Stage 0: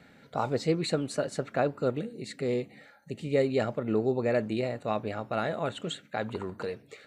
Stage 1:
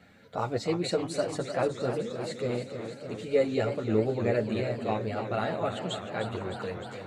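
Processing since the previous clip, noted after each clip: chorus voices 4, 0.42 Hz, delay 10 ms, depth 1.4 ms; warbling echo 0.303 s, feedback 77%, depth 118 cents, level -9.5 dB; gain +2.5 dB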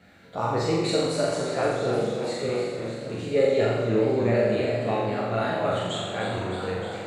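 spectral trails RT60 0.47 s; on a send: flutter echo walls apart 7.4 m, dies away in 0.97 s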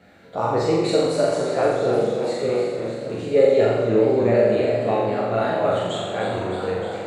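bell 520 Hz +6 dB 2 oct

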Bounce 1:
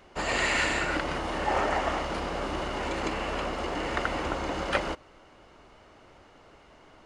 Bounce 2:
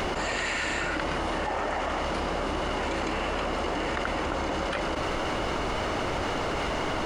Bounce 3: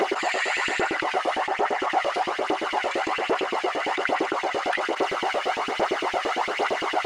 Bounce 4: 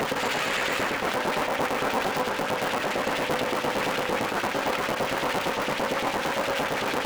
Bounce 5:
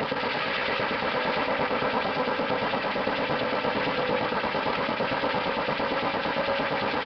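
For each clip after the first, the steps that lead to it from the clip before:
fast leveller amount 100%; gain -6.5 dB
LFO high-pass saw up 8.8 Hz 280–3100 Hz; phaser 1.2 Hz, delay 1.8 ms, feedback 40%; small resonant body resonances 390/750/2000 Hz, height 7 dB, ringing for 35 ms
cycle switcher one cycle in 3, inverted; limiter -18 dBFS, peak gain reduction 7.5 dB; on a send at -7 dB: reverb RT60 2.7 s, pre-delay 3 ms
notch comb 360 Hz; echo 0.68 s -5.5 dB; downsampling 11025 Hz

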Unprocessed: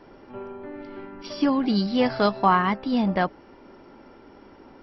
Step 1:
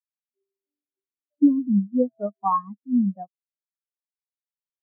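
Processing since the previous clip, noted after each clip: spectral expander 4:1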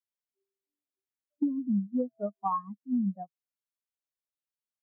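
compressor 6:1, threshold -21 dBFS, peak gain reduction 10 dB; dynamic EQ 160 Hz, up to +4 dB, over -45 dBFS, Q 3.2; gain -4.5 dB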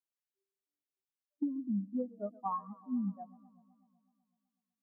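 warbling echo 0.125 s, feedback 69%, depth 122 cents, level -21 dB; gain -6 dB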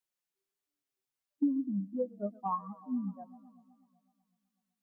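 flange 0.43 Hz, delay 5.2 ms, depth 3 ms, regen +20%; gain +7 dB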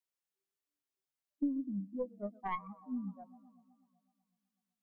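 tracing distortion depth 0.12 ms; gain -4.5 dB

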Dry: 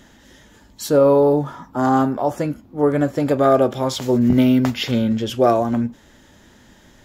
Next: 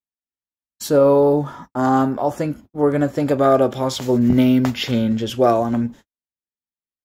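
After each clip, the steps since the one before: gate -37 dBFS, range -58 dB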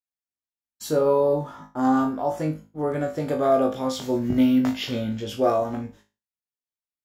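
flutter echo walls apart 3.3 m, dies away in 0.29 s; gain -8 dB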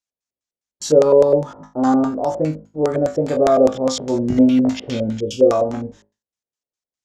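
spectral gain 5.19–5.51, 570–2200 Hz -18 dB; LFO low-pass square 4.9 Hz 530–6600 Hz; gain +4 dB

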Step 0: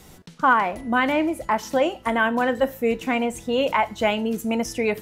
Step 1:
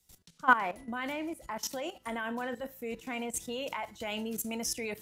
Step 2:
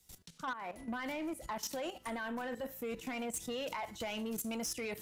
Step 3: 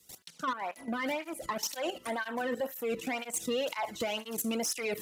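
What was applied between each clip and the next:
high shelf 3200 Hz +12 dB; level quantiser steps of 14 dB; three-band expander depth 40%; gain -7.5 dB
compressor 8:1, threshold -36 dBFS, peak gain reduction 19 dB; soft clip -36 dBFS, distortion -14 dB; gain +3.5 dB
tape flanging out of phase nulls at 2 Hz, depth 1.4 ms; gain +9 dB

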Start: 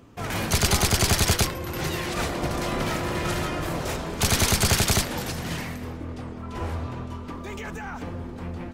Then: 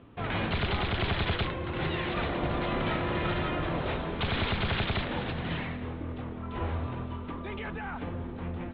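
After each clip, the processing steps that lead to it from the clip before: steep low-pass 3800 Hz 72 dB/oct; limiter -18.5 dBFS, peak gain reduction 8 dB; gain -2 dB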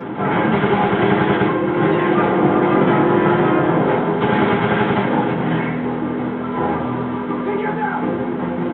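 delta modulation 32 kbps, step -35.5 dBFS; downsampling 8000 Hz; reverb RT60 0.35 s, pre-delay 3 ms, DRR -9.5 dB; gain -7 dB

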